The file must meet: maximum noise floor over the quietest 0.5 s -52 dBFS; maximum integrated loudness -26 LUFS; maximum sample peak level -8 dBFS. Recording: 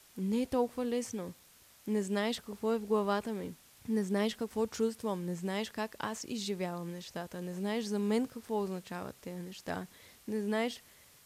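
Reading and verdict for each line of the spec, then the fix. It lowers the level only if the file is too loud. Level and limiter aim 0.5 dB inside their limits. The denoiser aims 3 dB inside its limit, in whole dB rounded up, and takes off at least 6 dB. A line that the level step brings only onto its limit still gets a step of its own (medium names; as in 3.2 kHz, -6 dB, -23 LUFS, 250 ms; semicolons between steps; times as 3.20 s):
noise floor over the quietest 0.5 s -61 dBFS: pass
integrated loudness -35.5 LUFS: pass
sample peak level -18.0 dBFS: pass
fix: none needed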